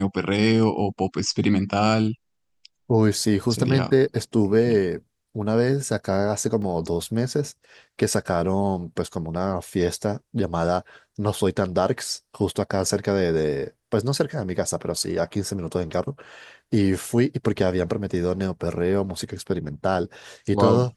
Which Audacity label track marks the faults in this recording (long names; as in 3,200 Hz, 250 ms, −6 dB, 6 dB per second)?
6.620000	6.620000	drop-out 2.8 ms